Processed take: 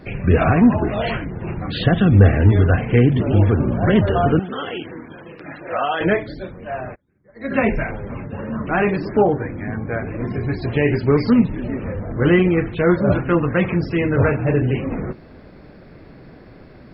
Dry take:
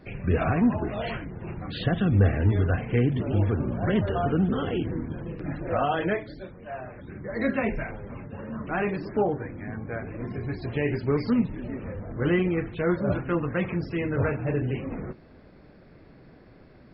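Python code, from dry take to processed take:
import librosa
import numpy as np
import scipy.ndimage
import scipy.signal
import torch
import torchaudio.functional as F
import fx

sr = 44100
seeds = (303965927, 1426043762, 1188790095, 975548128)

y = fx.highpass(x, sr, hz=1100.0, slope=6, at=(4.39, 6.01))
y = fx.upward_expand(y, sr, threshold_db=-40.0, expansion=2.5, at=(6.94, 7.5), fade=0.02)
y = y * 10.0 ** (9.0 / 20.0)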